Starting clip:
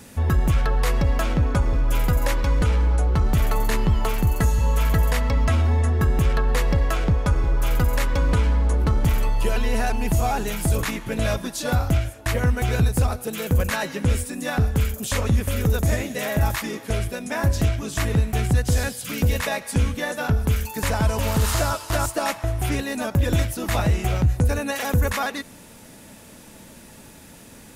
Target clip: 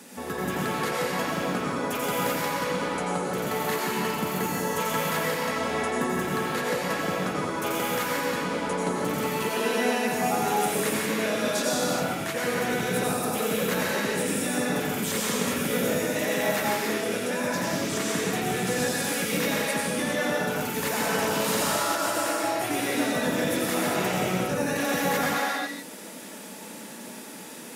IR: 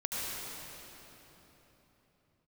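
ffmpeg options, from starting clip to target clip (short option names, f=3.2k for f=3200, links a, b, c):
-filter_complex "[0:a]highpass=f=200:w=0.5412,highpass=f=200:w=1.3066,alimiter=limit=-19.5dB:level=0:latency=1:release=311[a];[1:a]atrim=start_sample=2205,afade=t=out:st=0.41:d=0.01,atrim=end_sample=18522,asetrate=37926,aresample=44100[b];[a][b]afir=irnorm=-1:irlink=0"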